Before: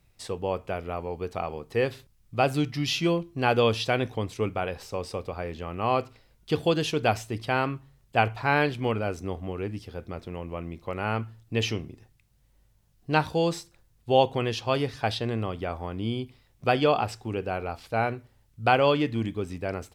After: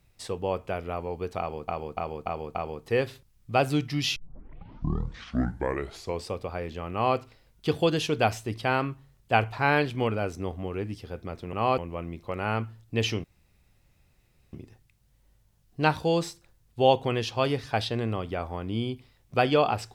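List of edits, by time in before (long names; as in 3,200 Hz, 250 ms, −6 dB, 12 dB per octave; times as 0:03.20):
0:01.39–0:01.68: repeat, 5 plays
0:03.00: tape start 2.13 s
0:05.76–0:06.01: duplicate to 0:10.37
0:11.83: splice in room tone 1.29 s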